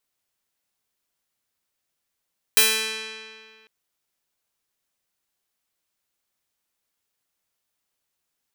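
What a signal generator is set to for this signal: plucked string A3, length 1.10 s, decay 2.04 s, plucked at 0.31, bright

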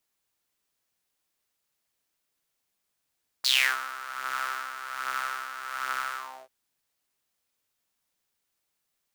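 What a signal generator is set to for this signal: synth patch with tremolo C3, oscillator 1 saw, noise -20 dB, filter highpass, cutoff 580 Hz, Q 6.6, filter envelope 3 oct, filter decay 0.29 s, attack 11 ms, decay 0.31 s, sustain -15.5 dB, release 0.31 s, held 2.73 s, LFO 1.3 Hz, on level 8 dB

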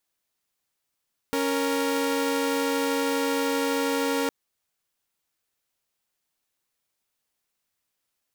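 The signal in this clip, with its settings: chord C#4/A#4 saw, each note -23.5 dBFS 2.96 s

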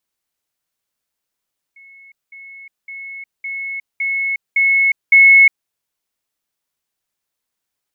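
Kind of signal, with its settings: level ladder 2.19 kHz -40.5 dBFS, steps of 6 dB, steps 7, 0.36 s 0.20 s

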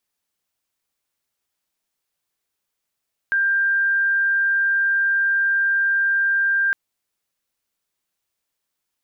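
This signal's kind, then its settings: tone sine 1.59 kHz -16 dBFS 3.41 s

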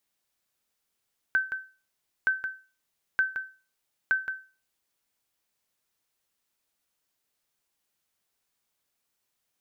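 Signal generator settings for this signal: sonar ping 1.54 kHz, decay 0.34 s, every 0.92 s, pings 4, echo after 0.17 s, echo -8.5 dB -16.5 dBFS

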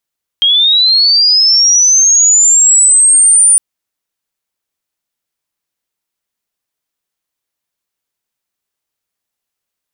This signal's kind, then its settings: sweep linear 3.2 kHz -> 9.4 kHz -6 dBFS -> -3.5 dBFS 3.16 s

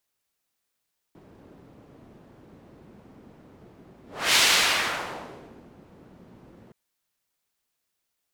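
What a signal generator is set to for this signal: whoosh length 5.57 s, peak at 3.21 s, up 0.33 s, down 1.43 s, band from 260 Hz, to 3.7 kHz, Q 0.85, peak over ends 32.5 dB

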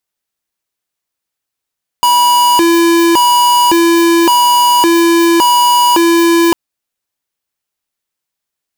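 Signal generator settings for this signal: siren hi-lo 337–972 Hz 0.89 per s square -8.5 dBFS 4.50 s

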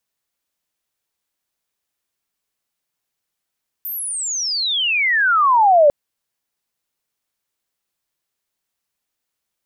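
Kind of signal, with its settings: sweep logarithmic 14 kHz -> 560 Hz -24 dBFS -> -7.5 dBFS 2.05 s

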